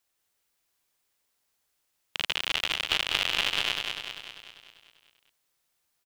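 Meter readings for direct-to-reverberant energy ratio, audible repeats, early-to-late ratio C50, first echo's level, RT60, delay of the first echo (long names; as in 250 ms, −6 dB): no reverb audible, 7, no reverb audible, −4.5 dB, no reverb audible, 197 ms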